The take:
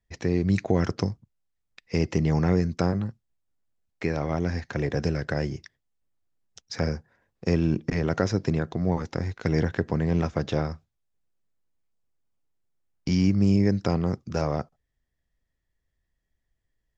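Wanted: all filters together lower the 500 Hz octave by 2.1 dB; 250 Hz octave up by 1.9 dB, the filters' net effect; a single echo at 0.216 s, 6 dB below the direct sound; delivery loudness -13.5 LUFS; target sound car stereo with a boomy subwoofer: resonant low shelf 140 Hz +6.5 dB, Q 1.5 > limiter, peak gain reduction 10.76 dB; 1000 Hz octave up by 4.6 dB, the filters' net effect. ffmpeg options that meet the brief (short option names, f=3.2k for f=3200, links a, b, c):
-af "lowshelf=f=140:t=q:w=1.5:g=6.5,equalizer=f=250:t=o:g=5.5,equalizer=f=500:t=o:g=-6,equalizer=f=1k:t=o:g=8.5,aecho=1:1:216:0.501,volume=12.5dB,alimiter=limit=-3dB:level=0:latency=1"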